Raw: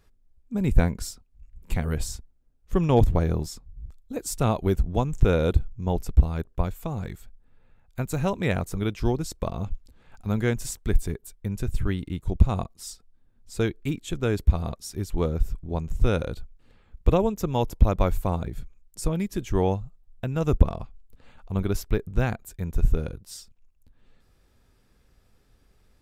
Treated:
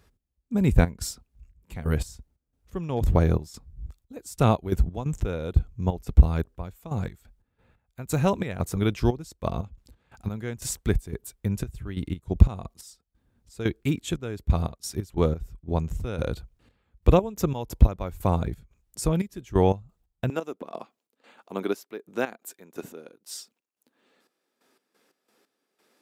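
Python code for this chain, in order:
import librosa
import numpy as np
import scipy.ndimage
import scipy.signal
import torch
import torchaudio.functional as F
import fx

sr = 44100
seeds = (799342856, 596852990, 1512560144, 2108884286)

y = fx.step_gate(x, sr, bpm=89, pattern='x..xx.xxx..x.x.', floor_db=-12.0, edge_ms=4.5)
y = fx.highpass(y, sr, hz=fx.steps((0.0, 40.0), (20.3, 260.0)), slope=24)
y = y * librosa.db_to_amplitude(3.0)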